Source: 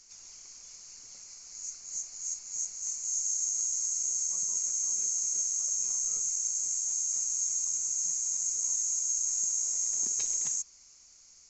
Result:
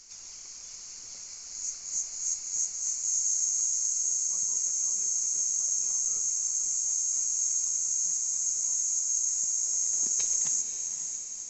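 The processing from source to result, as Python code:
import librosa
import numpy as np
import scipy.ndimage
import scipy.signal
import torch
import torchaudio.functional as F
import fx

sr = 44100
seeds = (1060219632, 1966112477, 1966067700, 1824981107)

y = fx.echo_diffused(x, sr, ms=543, feedback_pct=51, wet_db=-8.0)
y = fx.rider(y, sr, range_db=3, speed_s=2.0)
y = y * 10.0 ** (2.0 / 20.0)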